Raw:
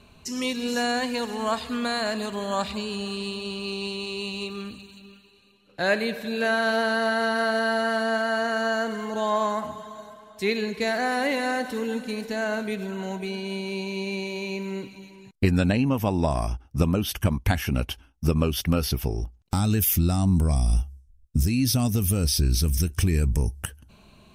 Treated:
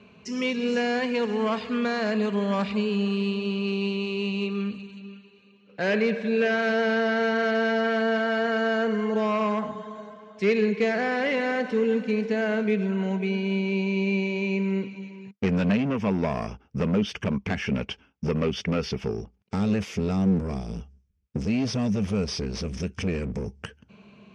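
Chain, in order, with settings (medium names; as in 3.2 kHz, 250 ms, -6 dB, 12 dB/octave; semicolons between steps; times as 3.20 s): hard clipper -22 dBFS, distortion -10 dB; cabinet simulation 130–5300 Hz, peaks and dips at 200 Hz +9 dB, 310 Hz -4 dB, 440 Hz +8 dB, 790 Hz -3 dB, 2.3 kHz +5 dB, 4 kHz -9 dB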